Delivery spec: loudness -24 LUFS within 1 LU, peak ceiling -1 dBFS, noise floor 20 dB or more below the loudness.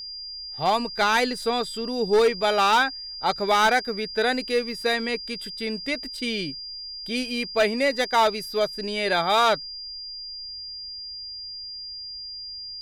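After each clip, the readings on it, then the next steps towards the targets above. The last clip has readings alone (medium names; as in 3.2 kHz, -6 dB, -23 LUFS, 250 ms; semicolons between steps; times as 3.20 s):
clipped samples 1.0%; clipping level -14.0 dBFS; steady tone 4.8 kHz; tone level -34 dBFS; loudness -25.0 LUFS; peak level -14.0 dBFS; loudness target -24.0 LUFS
-> clip repair -14 dBFS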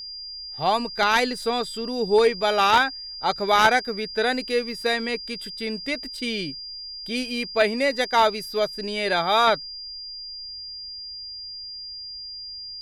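clipped samples 0.0%; steady tone 4.8 kHz; tone level -34 dBFS
-> band-stop 4.8 kHz, Q 30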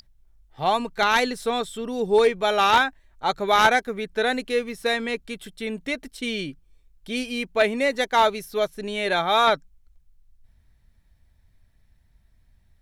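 steady tone not found; loudness -23.0 LUFS; peak level -4.5 dBFS; loudness target -24.0 LUFS
-> trim -1 dB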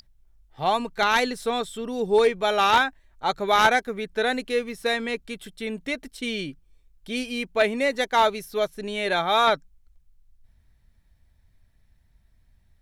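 loudness -24.0 LUFS; peak level -5.5 dBFS; noise floor -62 dBFS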